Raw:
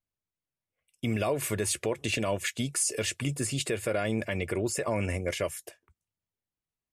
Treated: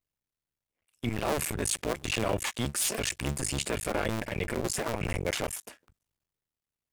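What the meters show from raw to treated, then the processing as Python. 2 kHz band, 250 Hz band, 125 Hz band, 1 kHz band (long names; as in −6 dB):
0.0 dB, −2.0 dB, −1.5 dB, +2.0 dB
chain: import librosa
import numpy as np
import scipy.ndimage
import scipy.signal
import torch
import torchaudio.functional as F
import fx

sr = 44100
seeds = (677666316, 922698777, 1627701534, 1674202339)

y = fx.cycle_switch(x, sr, every=2, mode='muted')
y = fx.transient(y, sr, attack_db=-4, sustain_db=4)
y = F.gain(torch.from_numpy(y), 3.0).numpy()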